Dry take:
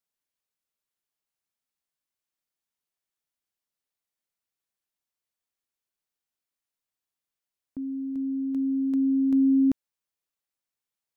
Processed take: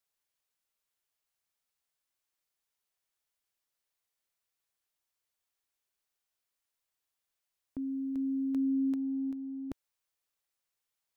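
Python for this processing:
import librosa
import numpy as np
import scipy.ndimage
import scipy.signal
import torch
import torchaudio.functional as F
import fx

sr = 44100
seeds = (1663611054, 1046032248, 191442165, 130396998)

y = fx.peak_eq(x, sr, hz=210.0, db=-7.5, octaves=1.4)
y = fx.over_compress(y, sr, threshold_db=-31.0, ratio=-0.5)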